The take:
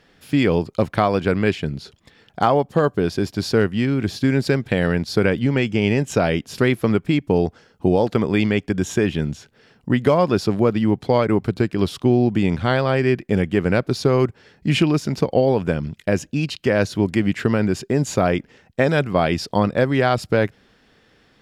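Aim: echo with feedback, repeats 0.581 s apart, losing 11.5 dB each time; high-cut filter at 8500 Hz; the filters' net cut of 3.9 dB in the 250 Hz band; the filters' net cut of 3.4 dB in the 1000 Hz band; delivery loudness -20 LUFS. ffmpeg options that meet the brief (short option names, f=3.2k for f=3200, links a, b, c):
-af "lowpass=8.5k,equalizer=f=250:t=o:g=-5,equalizer=f=1k:t=o:g=-4.5,aecho=1:1:581|1162|1743:0.266|0.0718|0.0194,volume=2.5dB"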